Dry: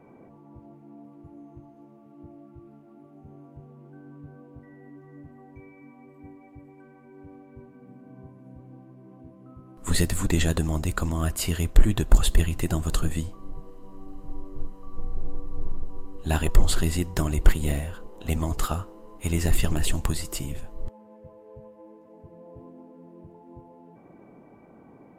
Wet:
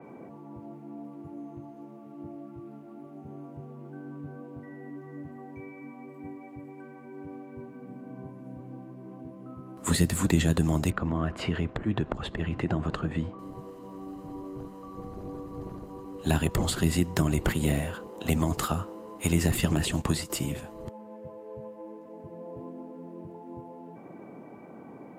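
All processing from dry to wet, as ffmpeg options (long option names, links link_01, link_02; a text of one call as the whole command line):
ffmpeg -i in.wav -filter_complex "[0:a]asettb=1/sr,asplit=3[link_01][link_02][link_03];[link_01]atrim=end=10.904[link_04];[link_02]atrim=start=10.9:end=13.39,asetpts=PTS-STARTPTS,afade=type=in:duration=0.004:curve=qsin,afade=type=out:start_time=2.486:duration=0.004:curve=qsin,lowpass=2100,acompressor=threshold=-25dB:ratio=3:attack=3.2:release=140:knee=1:detection=peak[link_05];[link_03]atrim=start=13.386[link_06];[link_04][link_05]acrossfade=duration=0.004:curve1=hsin:curve2=qsin[link_07];[link_07][link_06]acrossfade=duration=0.004:curve1=qsin:curve2=hsin,asettb=1/sr,asplit=3[link_08][link_09][link_10];[link_08]atrim=end=19.644[link_11];[link_09]atrim=start=19.64:end=20.3,asetpts=PTS-STARTPTS,afade=type=in:duration=0.004:curve=qsin,afade=type=out:start_time=0.656:duration=0.004:curve=qsin,acrossover=split=9000[link_12][link_13];[link_13]acompressor=threshold=-44dB:ratio=4:attack=1:release=60[link_14];[link_12][link_14]amix=inputs=2:normalize=0,agate=range=-8dB:threshold=-31dB:ratio=16:release=100:detection=peak[link_15];[link_10]atrim=start=20.296[link_16];[link_11][link_15]acrossfade=duration=0.004:curve1=hsin:curve2=qsin[link_17];[link_17][link_16]acrossfade=duration=0.004:curve1=qsin:curve2=hsin,highpass=130,acrossover=split=240[link_18][link_19];[link_19]acompressor=threshold=-32dB:ratio=10[link_20];[link_18][link_20]amix=inputs=2:normalize=0,adynamicequalizer=threshold=0.00282:dfrequency=4000:dqfactor=0.7:tfrequency=4000:tqfactor=0.7:attack=5:release=100:ratio=0.375:range=1.5:mode=cutabove:tftype=highshelf,volume=5.5dB" out.wav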